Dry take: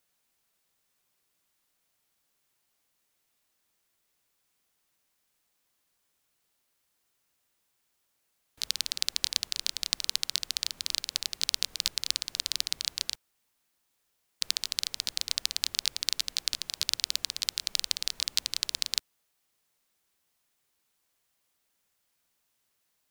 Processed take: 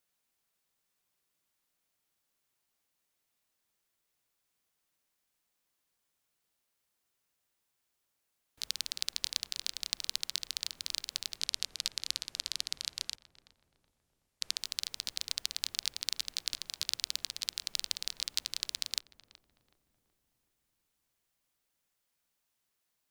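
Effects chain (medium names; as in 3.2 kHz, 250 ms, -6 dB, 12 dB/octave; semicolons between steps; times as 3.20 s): 11.38–14.57 s: low-pass 12 kHz 12 dB/octave; filtered feedback delay 374 ms, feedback 63%, low-pass 840 Hz, level -10.5 dB; trim -5.5 dB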